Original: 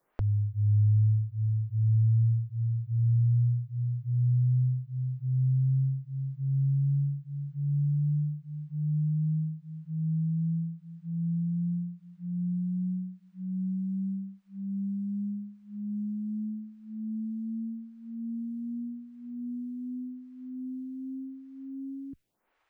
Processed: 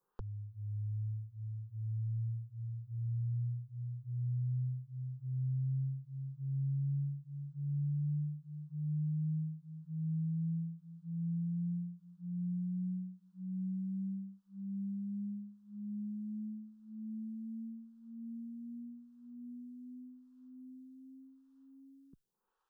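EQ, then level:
phaser with its sweep stopped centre 430 Hz, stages 8
−6.5 dB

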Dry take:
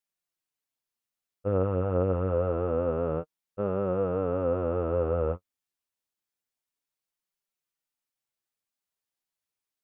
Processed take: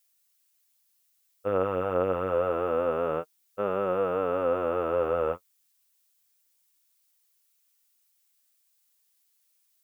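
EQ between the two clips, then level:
spectral tilt +4 dB per octave
low-shelf EQ 120 Hz −5.5 dB
+5.5 dB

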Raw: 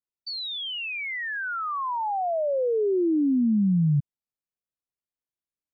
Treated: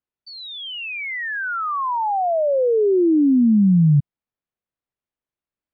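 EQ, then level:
high-frequency loss of the air 340 metres
+7.5 dB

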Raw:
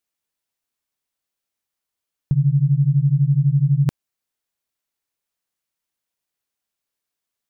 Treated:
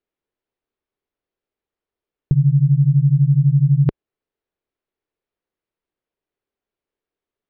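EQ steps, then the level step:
high-frequency loss of the air 310 metres
low-shelf EQ 62 Hz +10 dB
parametric band 400 Hz +11.5 dB 1 octave
0.0 dB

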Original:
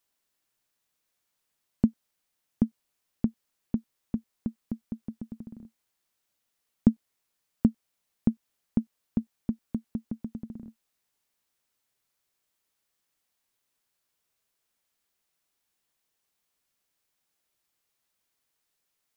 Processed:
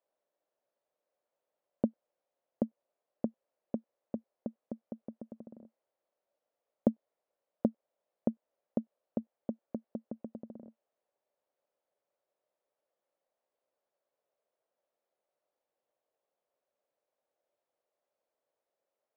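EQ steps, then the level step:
resonant band-pass 570 Hz, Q 4.4
+11.5 dB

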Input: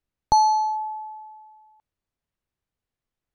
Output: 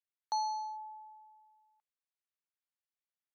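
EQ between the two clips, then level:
Bessel high-pass filter 1,500 Hz, order 2
high-frequency loss of the air 82 metres
−8.0 dB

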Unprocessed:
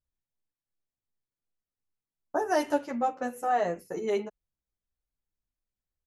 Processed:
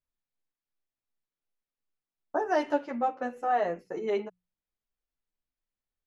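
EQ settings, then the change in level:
low-pass filter 3,700 Hz 12 dB per octave
parametric band 66 Hz −8 dB 2.2 octaves
mains-hum notches 60/120/180 Hz
0.0 dB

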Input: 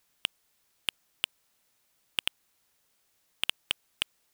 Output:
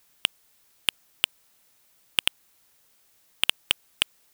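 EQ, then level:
high-shelf EQ 11,000 Hz +4.5 dB
+6.5 dB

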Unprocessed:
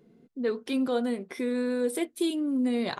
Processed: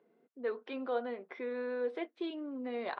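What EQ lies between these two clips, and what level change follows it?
band-pass filter 590–4,400 Hz
high-frequency loss of the air 200 metres
high-shelf EQ 2,900 Hz −11 dB
0.0 dB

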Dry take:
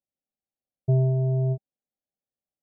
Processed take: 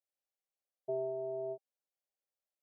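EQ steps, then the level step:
four-pole ladder high-pass 370 Hz, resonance 25%
+1.5 dB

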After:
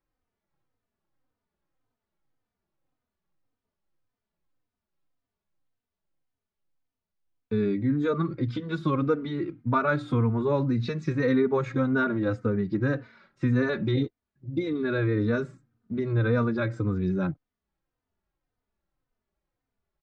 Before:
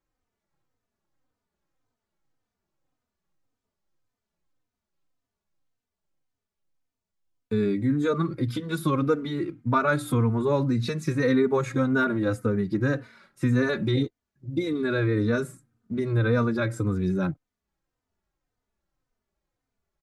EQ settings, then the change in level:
Chebyshev low-pass filter 6,900 Hz, order 2
high-frequency loss of the air 160 metres
0.0 dB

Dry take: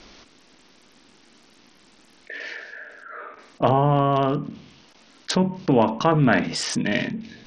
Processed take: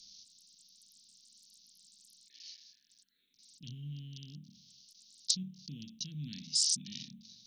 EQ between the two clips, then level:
elliptic band-stop filter 190–4,100 Hz, stop band 80 dB
first-order pre-emphasis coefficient 0.9
low-shelf EQ 82 Hz −11 dB
+2.5 dB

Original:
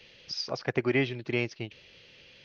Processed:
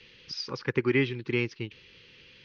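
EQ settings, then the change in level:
Butterworth band-reject 670 Hz, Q 1.7
high-frequency loss of the air 79 metres
+2.0 dB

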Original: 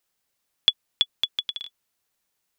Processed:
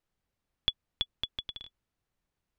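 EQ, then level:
RIAA equalisation playback
−4.5 dB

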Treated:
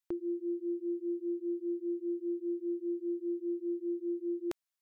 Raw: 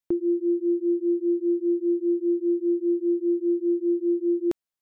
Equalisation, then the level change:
parametric band 260 Hz −7 dB 1.8 octaves
low-shelf EQ 470 Hz −9 dB
0.0 dB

